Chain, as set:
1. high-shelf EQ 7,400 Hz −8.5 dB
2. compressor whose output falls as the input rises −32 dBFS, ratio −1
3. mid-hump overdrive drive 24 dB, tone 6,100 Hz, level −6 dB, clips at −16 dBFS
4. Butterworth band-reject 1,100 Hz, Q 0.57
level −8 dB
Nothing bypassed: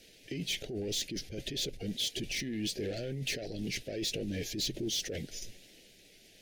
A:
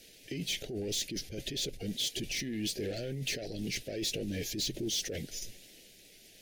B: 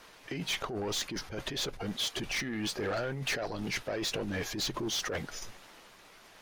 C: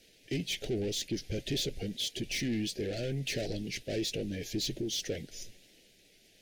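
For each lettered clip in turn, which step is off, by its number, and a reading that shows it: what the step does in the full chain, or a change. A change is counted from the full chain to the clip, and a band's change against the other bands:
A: 1, 8 kHz band +2.0 dB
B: 4, 1 kHz band +17.5 dB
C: 2, 8 kHz band −3.5 dB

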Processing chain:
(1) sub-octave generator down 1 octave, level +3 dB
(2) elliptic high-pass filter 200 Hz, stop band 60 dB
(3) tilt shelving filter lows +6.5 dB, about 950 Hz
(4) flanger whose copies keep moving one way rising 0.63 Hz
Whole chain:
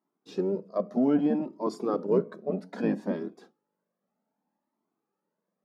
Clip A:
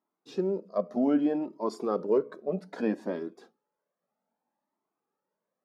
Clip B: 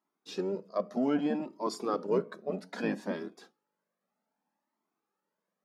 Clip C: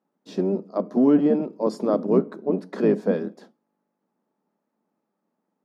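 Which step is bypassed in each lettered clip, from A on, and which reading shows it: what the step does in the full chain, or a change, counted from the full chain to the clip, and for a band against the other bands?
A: 1, 125 Hz band −4.5 dB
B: 3, 2 kHz band +8.0 dB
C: 4, 1 kHz band −2.5 dB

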